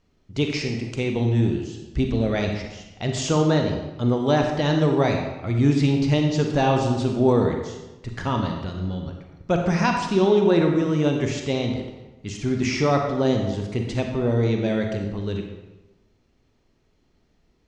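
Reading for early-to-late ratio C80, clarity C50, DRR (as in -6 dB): 6.5 dB, 4.0 dB, 2.5 dB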